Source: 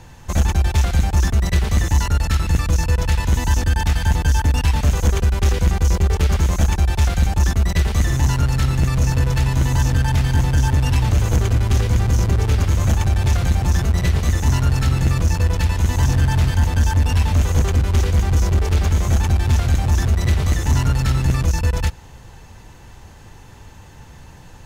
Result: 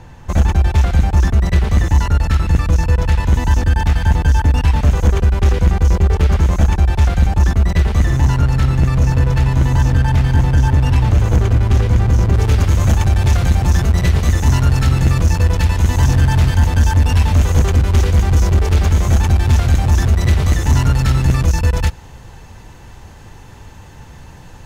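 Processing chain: treble shelf 3.4 kHz -11 dB, from 12.34 s -2.5 dB; trim +4 dB

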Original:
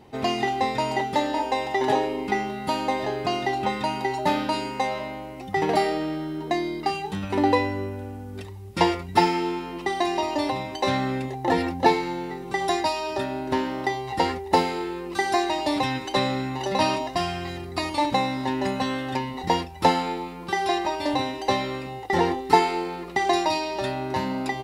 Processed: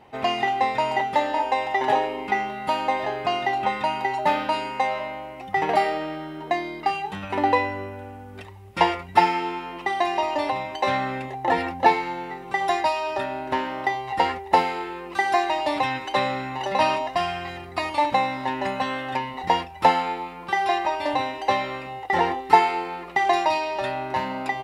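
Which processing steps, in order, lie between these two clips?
high-order bell 1.3 kHz +8.5 dB 2.8 oct; trim -5.5 dB

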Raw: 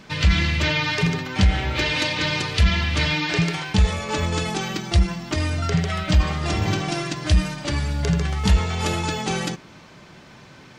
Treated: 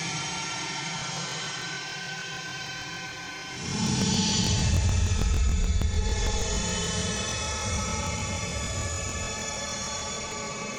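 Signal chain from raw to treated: peaking EQ 6.3 kHz +14 dB 0.77 oct; Paulstretch 21×, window 0.05 s, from 3.56 s; compression, threshold -15 dBFS, peak gain reduction 7.5 dB; crackling interface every 0.15 s, samples 1024, repeat, from 0.97 s; trim -5.5 dB

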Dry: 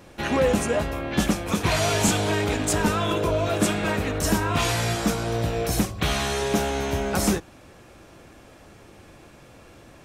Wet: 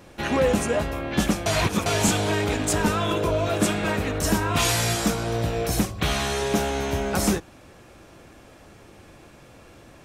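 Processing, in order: 1.46–1.86 s: reverse; 4.56–5.08 s: treble shelf 4.4 kHz +8 dB

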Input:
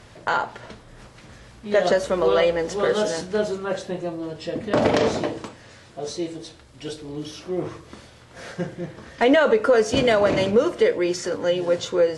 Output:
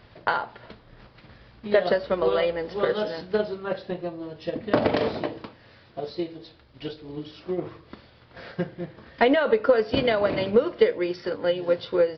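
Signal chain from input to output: resampled via 11.025 kHz; transient shaper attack +7 dB, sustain -1 dB; trim -5.5 dB

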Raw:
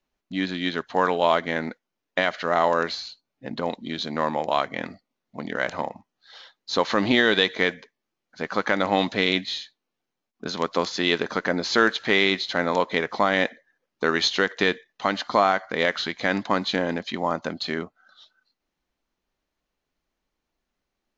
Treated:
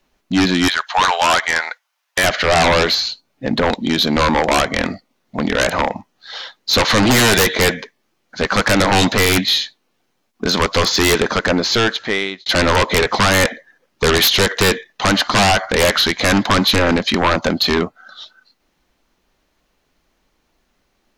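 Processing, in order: 0.68–2.24 s: high-pass 810 Hz 24 dB/octave; 10.96–12.46 s: fade out; sine folder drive 17 dB, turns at -4 dBFS; trim -5 dB

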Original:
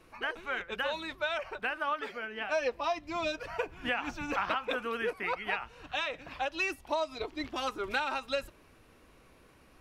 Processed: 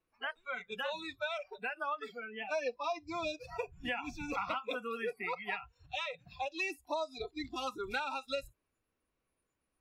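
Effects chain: spectral noise reduction 24 dB; in parallel at -3 dB: compression, threshold -38 dBFS, peak gain reduction 11.5 dB; on the sum: trim -6 dB

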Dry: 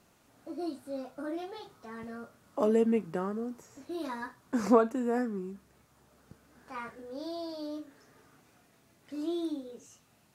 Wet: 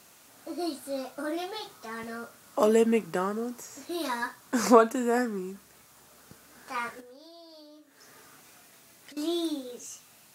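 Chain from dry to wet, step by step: 7.00–9.17 s: compression 16:1, threshold -53 dBFS, peak gain reduction 18 dB; tilt EQ +2.5 dB/octave; trim +7 dB

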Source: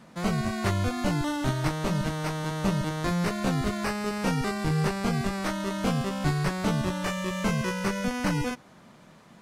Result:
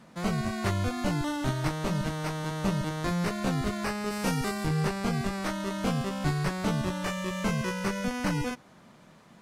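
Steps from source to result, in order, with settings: 4.10–4.65 s: treble shelf 5.4 kHz -> 9 kHz +9 dB; trim -2 dB

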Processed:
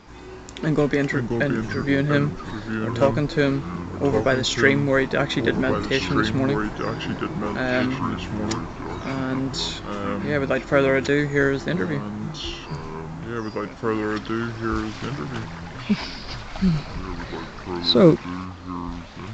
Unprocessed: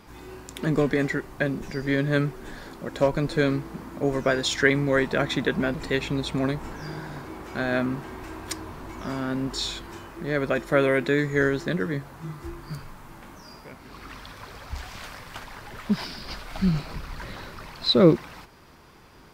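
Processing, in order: ever faster or slower copies 326 ms, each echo -4 st, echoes 2, each echo -6 dB; trim +2.5 dB; A-law 128 kbps 16 kHz

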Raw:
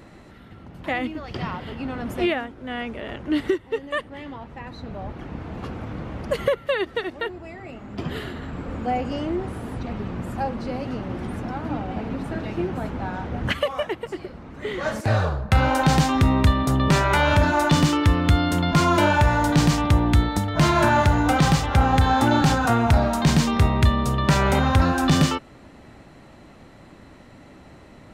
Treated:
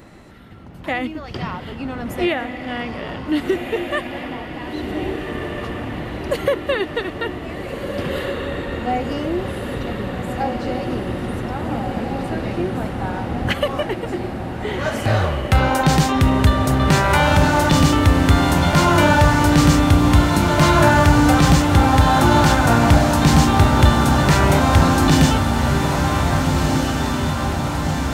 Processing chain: treble shelf 9.8 kHz +7 dB; on a send: echo that smears into a reverb 1594 ms, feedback 67%, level -4.5 dB; on the sum: trim +2.5 dB

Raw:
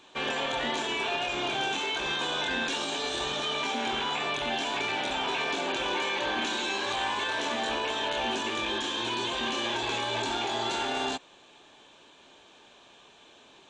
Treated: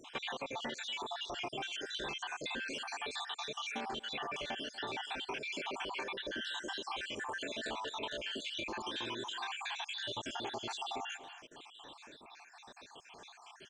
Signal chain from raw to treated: random holes in the spectrogram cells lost 63%; speakerphone echo 240 ms, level -20 dB; compression 5:1, threshold -44 dBFS, peak gain reduction 14.5 dB; trim +5 dB

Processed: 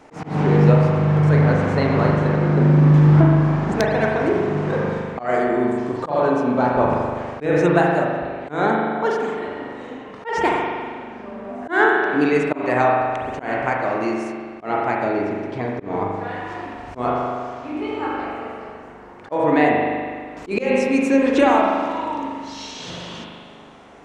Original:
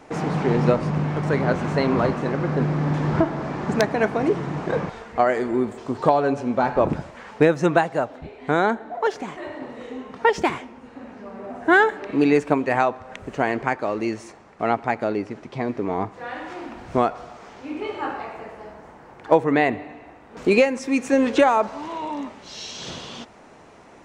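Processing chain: spring tank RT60 1.9 s, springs 40 ms, chirp 75 ms, DRR -1.5 dB; slow attack 151 ms; trim -1 dB

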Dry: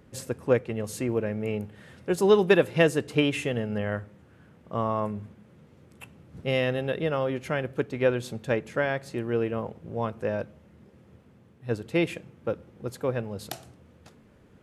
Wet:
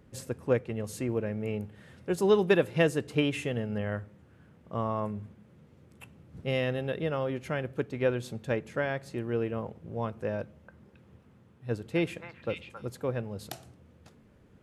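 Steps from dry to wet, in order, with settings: bass shelf 180 Hz +4 dB; 10.41–12.89 s: repeats whose band climbs or falls 271 ms, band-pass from 1.2 kHz, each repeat 1.4 oct, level -1 dB; trim -4.5 dB

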